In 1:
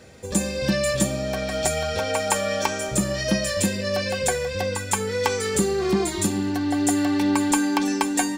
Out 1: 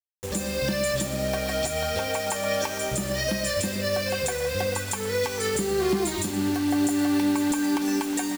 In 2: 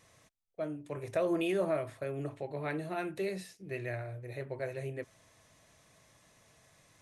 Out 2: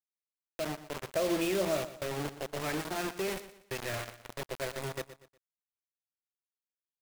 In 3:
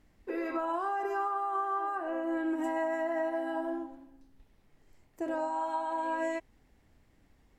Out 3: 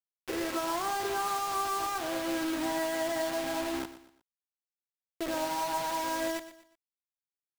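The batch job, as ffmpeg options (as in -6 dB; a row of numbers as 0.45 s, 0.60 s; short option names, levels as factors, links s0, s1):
-filter_complex "[0:a]alimiter=limit=0.15:level=0:latency=1:release=206,acrusher=bits=5:mix=0:aa=0.000001,asplit=2[s0][s1];[s1]aecho=0:1:120|240|360:0.2|0.0698|0.0244[s2];[s0][s2]amix=inputs=2:normalize=0"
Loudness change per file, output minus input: -2.5 LU, +1.5 LU, +1.0 LU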